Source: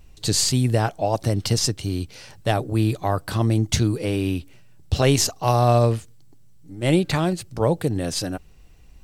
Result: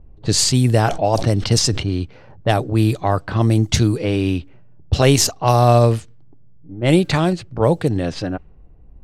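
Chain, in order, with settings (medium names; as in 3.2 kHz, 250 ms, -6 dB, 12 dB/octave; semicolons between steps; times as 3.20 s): level-controlled noise filter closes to 620 Hz, open at -15.5 dBFS; 0.52–1.90 s: decay stretcher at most 77 dB/s; trim +4.5 dB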